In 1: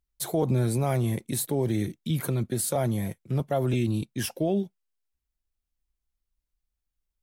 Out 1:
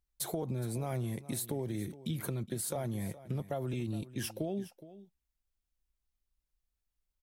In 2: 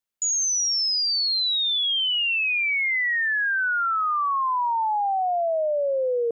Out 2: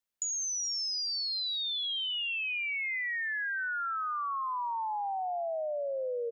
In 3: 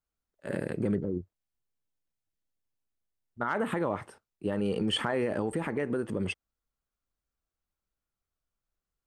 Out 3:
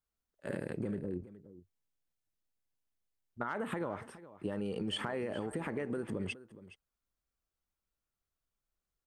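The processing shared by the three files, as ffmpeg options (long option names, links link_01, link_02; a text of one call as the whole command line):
ffmpeg -i in.wav -filter_complex "[0:a]acompressor=threshold=-31dB:ratio=6,asplit=2[link_01][link_02];[link_02]aecho=0:1:417:0.15[link_03];[link_01][link_03]amix=inputs=2:normalize=0,volume=-2dB" out.wav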